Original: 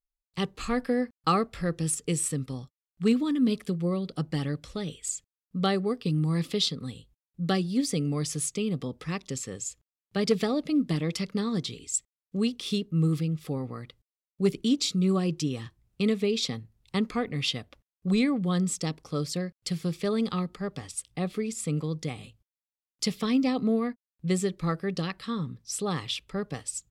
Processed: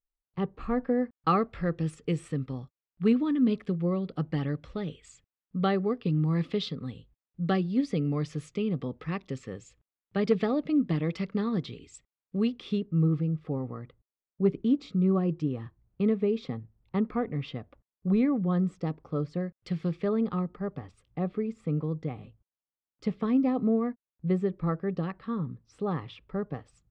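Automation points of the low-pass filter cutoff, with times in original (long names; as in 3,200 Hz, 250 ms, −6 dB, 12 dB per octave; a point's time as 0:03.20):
0:00.89 1,200 Hz
0:01.31 2,300 Hz
0:12.55 2,300 Hz
0:13.10 1,300 Hz
0:19.35 1,300 Hz
0:19.84 2,500 Hz
0:20.17 1,300 Hz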